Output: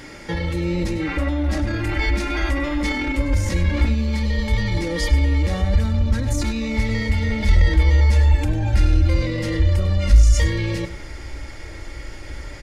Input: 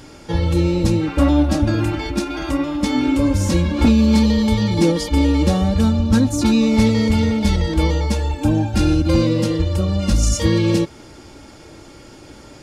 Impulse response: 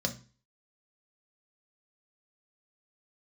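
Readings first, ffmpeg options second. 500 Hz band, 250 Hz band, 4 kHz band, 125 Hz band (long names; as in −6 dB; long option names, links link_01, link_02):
−6.5 dB, −9.5 dB, −4.5 dB, 0.0 dB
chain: -filter_complex "[0:a]alimiter=limit=-18dB:level=0:latency=1:release=10,equalizer=frequency=2000:width_type=o:width=0.45:gain=13,aecho=1:1:99:0.2,asplit=2[link_01][link_02];[1:a]atrim=start_sample=2205[link_03];[link_02][link_03]afir=irnorm=-1:irlink=0,volume=-20.5dB[link_04];[link_01][link_04]amix=inputs=2:normalize=0,asubboost=boost=11.5:cutoff=56"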